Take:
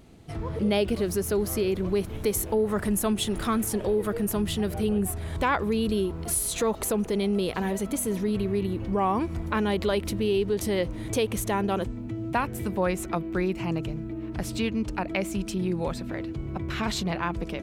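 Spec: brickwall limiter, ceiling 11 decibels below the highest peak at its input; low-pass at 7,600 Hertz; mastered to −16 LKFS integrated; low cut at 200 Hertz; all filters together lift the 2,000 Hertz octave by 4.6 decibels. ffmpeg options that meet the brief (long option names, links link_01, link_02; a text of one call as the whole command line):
ffmpeg -i in.wav -af "highpass=200,lowpass=7600,equalizer=frequency=2000:width_type=o:gain=6,volume=15dB,alimiter=limit=-5dB:level=0:latency=1" out.wav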